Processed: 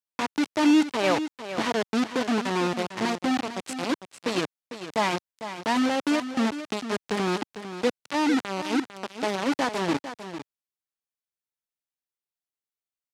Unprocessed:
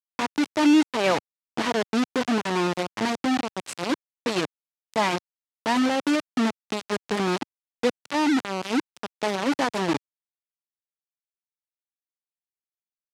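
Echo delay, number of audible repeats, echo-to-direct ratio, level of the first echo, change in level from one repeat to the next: 0.451 s, 1, -11.0 dB, -11.0 dB, no steady repeat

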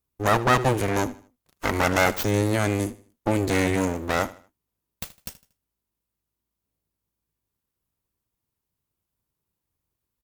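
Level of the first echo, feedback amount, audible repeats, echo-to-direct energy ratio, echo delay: -18.0 dB, 35%, 2, -17.5 dB, 78 ms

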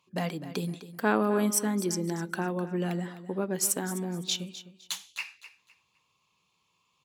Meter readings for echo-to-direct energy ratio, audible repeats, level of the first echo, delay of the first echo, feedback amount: -13.5 dB, 2, -14.0 dB, 0.255 s, 26%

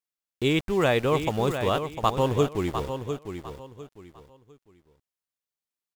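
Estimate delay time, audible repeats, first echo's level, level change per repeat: 0.702 s, 3, -8.5 dB, -11.5 dB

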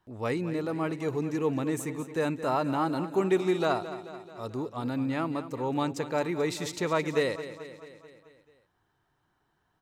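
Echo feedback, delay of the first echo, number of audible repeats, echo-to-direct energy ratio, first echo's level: 58%, 0.218 s, 5, -11.0 dB, -13.0 dB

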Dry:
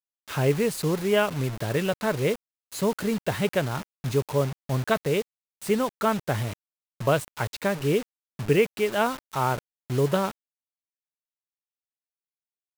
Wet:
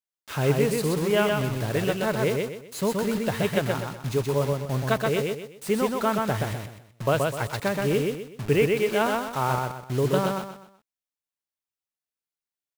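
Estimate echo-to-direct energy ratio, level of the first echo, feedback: -2.5 dB, -3.0 dB, 34%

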